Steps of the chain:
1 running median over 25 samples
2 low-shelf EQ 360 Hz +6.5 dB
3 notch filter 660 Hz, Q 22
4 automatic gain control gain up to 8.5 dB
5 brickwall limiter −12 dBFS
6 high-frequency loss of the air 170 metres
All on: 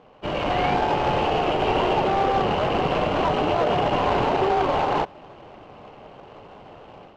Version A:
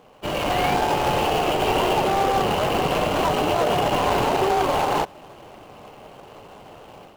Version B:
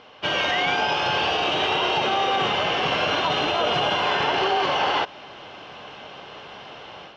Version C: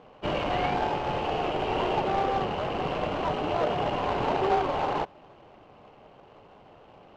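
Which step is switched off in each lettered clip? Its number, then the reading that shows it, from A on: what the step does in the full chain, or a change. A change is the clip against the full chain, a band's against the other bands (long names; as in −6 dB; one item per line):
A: 6, 4 kHz band +3.0 dB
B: 1, 4 kHz band +13.0 dB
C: 4, change in crest factor +5.5 dB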